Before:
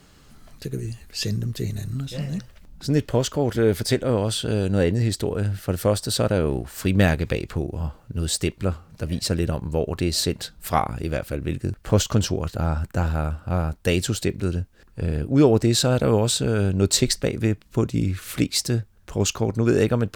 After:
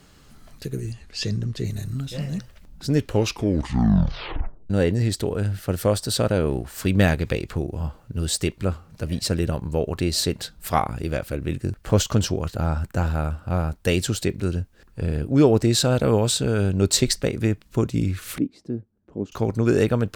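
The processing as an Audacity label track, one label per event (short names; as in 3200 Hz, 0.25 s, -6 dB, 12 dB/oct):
0.920000	1.650000	LPF 6600 Hz
2.980000	2.980000	tape stop 1.72 s
18.380000	19.320000	band-pass 270 Hz, Q 1.9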